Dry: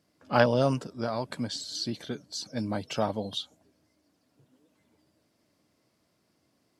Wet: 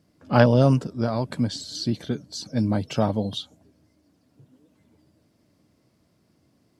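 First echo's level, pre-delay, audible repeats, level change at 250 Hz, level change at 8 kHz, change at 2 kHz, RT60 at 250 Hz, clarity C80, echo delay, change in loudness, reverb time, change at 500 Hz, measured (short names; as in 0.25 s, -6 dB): none, none, none, +8.5 dB, +1.5 dB, +2.0 dB, none, none, none, +6.5 dB, none, +4.5 dB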